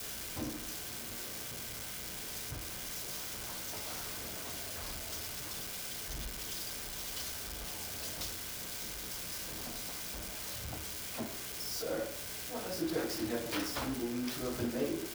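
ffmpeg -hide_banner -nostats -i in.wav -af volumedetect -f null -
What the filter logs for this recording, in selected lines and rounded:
mean_volume: -39.9 dB
max_volume: -21.9 dB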